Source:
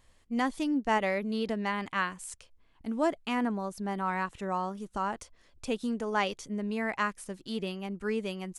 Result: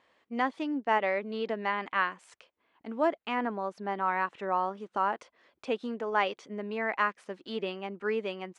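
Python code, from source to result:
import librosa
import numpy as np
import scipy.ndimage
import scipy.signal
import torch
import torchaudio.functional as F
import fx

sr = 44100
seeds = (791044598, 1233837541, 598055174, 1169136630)

p1 = fx.rider(x, sr, range_db=3, speed_s=0.5)
p2 = x + (p1 * librosa.db_to_amplitude(2.5))
p3 = fx.bandpass_edges(p2, sr, low_hz=350.0, high_hz=2800.0)
y = p3 * librosa.db_to_amplitude(-4.5)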